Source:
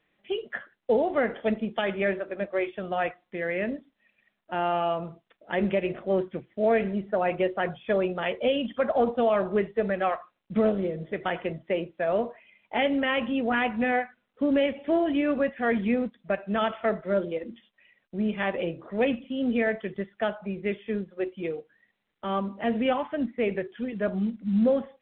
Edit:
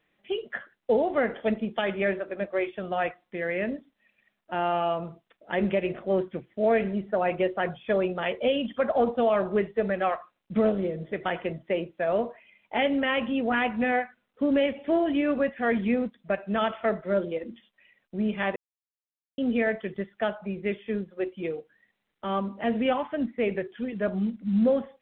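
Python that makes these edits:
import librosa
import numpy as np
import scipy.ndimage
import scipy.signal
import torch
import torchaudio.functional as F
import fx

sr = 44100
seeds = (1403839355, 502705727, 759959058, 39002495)

y = fx.edit(x, sr, fx.silence(start_s=18.56, length_s=0.82), tone=tone)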